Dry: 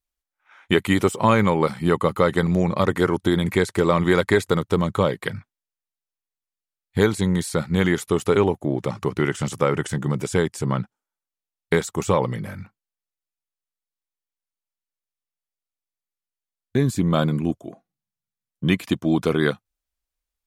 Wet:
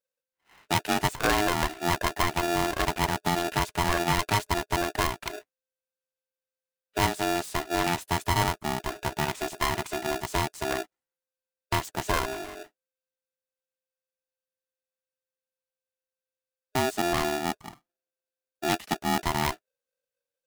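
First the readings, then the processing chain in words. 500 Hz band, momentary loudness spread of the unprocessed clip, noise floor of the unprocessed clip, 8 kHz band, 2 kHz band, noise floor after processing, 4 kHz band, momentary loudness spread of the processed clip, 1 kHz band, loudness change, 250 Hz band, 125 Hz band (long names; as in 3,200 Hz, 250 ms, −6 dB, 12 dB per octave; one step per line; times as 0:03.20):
−10.0 dB, 9 LU, below −85 dBFS, +1.5 dB, −2.5 dB, below −85 dBFS, +1.0 dB, 8 LU, 0.0 dB, −6.0 dB, −10.5 dB, −10.0 dB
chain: phase distortion by the signal itself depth 0.21 ms
ring modulator with a square carrier 520 Hz
level −6.5 dB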